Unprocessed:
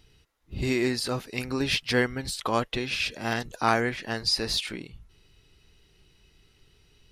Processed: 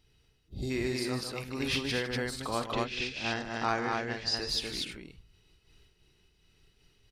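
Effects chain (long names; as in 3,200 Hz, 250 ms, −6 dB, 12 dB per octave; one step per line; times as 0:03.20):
0:00.37–0:00.70: gain on a spectral selection 820–3,100 Hz −14 dB
0:02.60–0:04.37: low-pass filter 7,200 Hz 24 dB per octave
on a send: loudspeakers that aren't time-aligned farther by 16 metres −11 dB, 52 metres −9 dB, 83 metres −2 dB
on the sum: amplitude modulation by smooth noise, depth 60%
level −3.5 dB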